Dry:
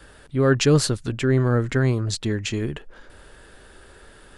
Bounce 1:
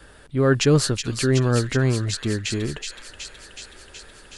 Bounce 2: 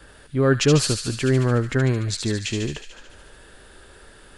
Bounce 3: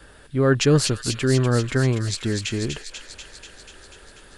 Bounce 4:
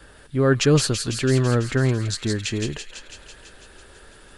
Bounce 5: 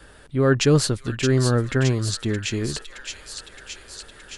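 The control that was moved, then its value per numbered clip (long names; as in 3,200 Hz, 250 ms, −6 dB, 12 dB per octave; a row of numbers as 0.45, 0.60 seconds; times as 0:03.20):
delay with a high-pass on its return, delay time: 372, 73, 244, 166, 619 milliseconds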